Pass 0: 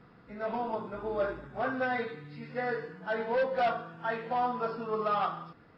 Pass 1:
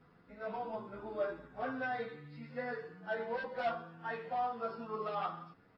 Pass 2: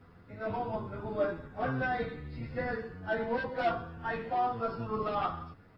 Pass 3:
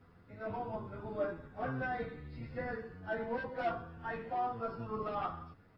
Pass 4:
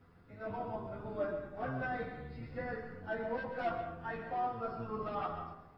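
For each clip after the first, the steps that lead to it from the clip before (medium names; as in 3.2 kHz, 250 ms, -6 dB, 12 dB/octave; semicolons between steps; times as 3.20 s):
endless flanger 9.6 ms +0.79 Hz; trim -4 dB
octave divider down 1 oct, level +2 dB; trim +5 dB
dynamic bell 4 kHz, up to -5 dB, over -56 dBFS, Q 1.4; trim -5 dB
reverberation RT60 0.90 s, pre-delay 85 ms, DRR 7.5 dB; trim -1 dB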